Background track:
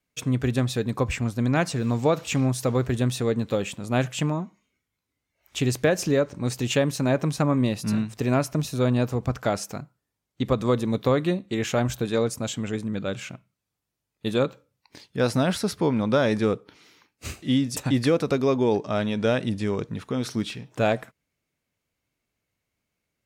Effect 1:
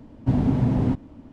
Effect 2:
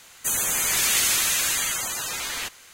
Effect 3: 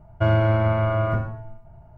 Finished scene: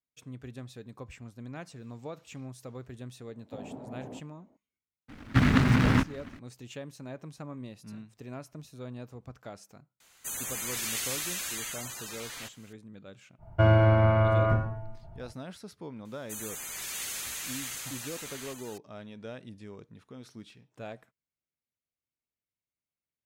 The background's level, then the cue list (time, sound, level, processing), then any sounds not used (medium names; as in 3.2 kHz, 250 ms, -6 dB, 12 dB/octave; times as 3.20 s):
background track -19.5 dB
3.25 s: add 1 -9.5 dB + band-pass filter 610 Hz, Q 1.9
5.08 s: add 1 -1.5 dB, fades 0.02 s + delay time shaken by noise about 1.4 kHz, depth 0.26 ms
10.00 s: add 2 -12 dB
13.38 s: add 3 -1.5 dB, fades 0.05 s
16.05 s: add 2 -16 dB + delay 635 ms -4.5 dB